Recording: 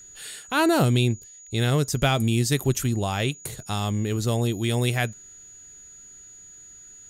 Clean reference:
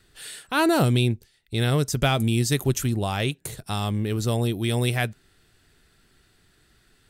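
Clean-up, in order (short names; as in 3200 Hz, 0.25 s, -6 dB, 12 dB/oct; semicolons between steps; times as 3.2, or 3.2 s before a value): notch 6800 Hz, Q 30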